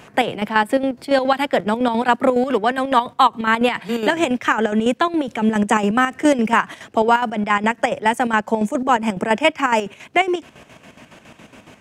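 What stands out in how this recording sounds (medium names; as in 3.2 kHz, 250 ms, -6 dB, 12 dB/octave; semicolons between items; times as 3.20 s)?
chopped level 7.2 Hz, depth 60%, duty 55%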